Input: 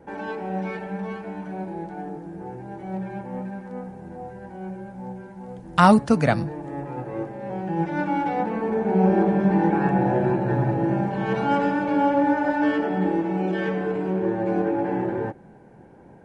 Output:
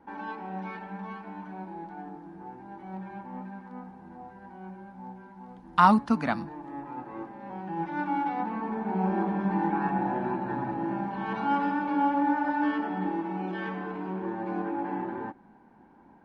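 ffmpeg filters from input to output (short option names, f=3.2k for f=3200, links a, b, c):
-af "equalizer=f=125:t=o:w=1:g=-11,equalizer=f=250:t=o:w=1:g=9,equalizer=f=500:t=o:w=1:g=-10,equalizer=f=1k:t=o:w=1:g=11,equalizer=f=4k:t=o:w=1:g=4,equalizer=f=8k:t=o:w=1:g=-9,volume=-9dB"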